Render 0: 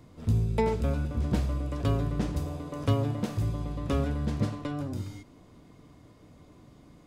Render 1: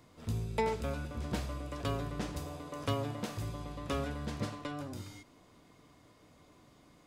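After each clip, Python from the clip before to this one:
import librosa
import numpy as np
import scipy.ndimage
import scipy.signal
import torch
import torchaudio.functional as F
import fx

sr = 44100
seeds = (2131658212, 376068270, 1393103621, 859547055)

y = fx.low_shelf(x, sr, hz=440.0, db=-11.0)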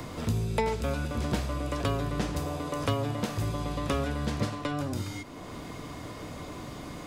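y = fx.band_squash(x, sr, depth_pct=70)
y = y * 10.0 ** (7.0 / 20.0)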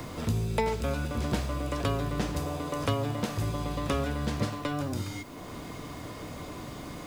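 y = fx.quant_dither(x, sr, seeds[0], bits=10, dither='triangular')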